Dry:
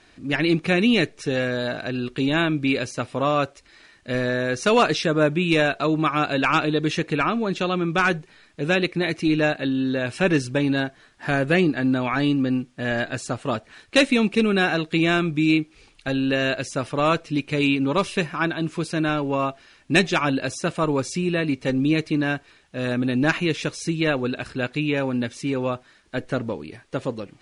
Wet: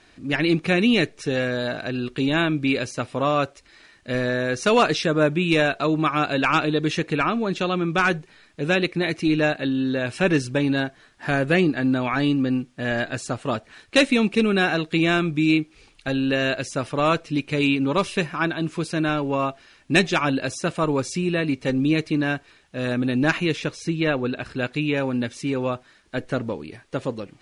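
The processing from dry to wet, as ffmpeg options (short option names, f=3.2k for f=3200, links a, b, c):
-filter_complex "[0:a]asettb=1/sr,asplit=3[a][b][c];[a]atrim=end=23.594[d];[b]atrim=start=23.59:end=24.51,asetpts=PTS-STARTPTS,afade=t=in:d=0.004:c=qsin,afade=t=out:st=0.916:d=0.004:c=qsin,highshelf=f=6.3k:g=-10[e];[c]atrim=start=24.506[f];[d][e]acrossfade=d=0.004:c1=hsin:c2=qsin[g];[g][f]acrossfade=d=0.004:c1=qsin:c2=hsin"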